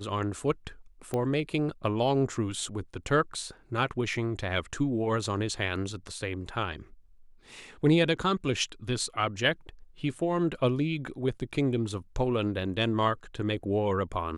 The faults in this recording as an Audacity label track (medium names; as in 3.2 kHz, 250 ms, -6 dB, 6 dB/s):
1.140000	1.140000	pop -18 dBFS